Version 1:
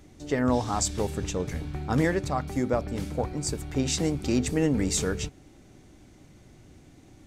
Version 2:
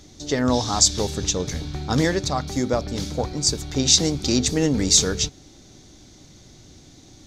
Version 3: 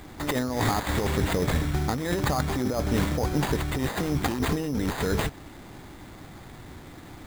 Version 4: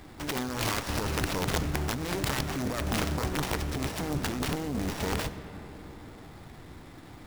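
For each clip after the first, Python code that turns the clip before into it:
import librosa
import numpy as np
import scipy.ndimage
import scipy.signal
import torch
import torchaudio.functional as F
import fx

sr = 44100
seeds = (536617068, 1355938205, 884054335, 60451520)

y1 = fx.band_shelf(x, sr, hz=4800.0, db=12.0, octaves=1.2)
y1 = y1 * librosa.db_to_amplitude(3.5)
y2 = fx.over_compress(y1, sr, threshold_db=-26.0, ratio=-1.0)
y2 = fx.sample_hold(y2, sr, seeds[0], rate_hz=5600.0, jitter_pct=0)
y3 = fx.self_delay(y2, sr, depth_ms=0.97)
y3 = fx.rev_freeverb(y3, sr, rt60_s=4.7, hf_ratio=0.3, predelay_ms=30, drr_db=11.0)
y3 = (np.mod(10.0 ** (16.0 / 20.0) * y3 + 1.0, 2.0) - 1.0) / 10.0 ** (16.0 / 20.0)
y3 = y3 * librosa.db_to_amplitude(-4.0)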